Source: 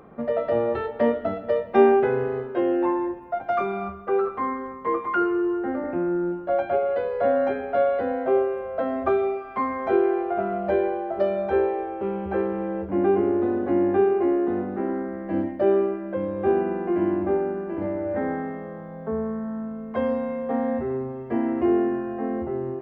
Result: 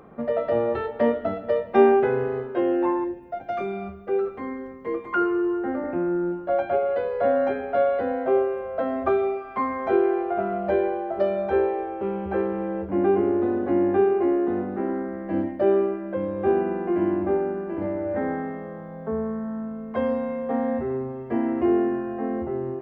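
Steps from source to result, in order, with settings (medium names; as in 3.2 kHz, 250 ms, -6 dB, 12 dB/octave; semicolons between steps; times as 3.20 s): 3.04–5.13 s: peaking EQ 1.1 kHz -13.5 dB 0.85 oct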